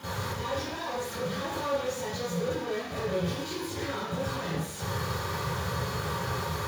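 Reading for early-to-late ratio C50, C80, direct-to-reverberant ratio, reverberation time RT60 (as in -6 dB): -5.0 dB, 2.0 dB, -15.0 dB, 0.70 s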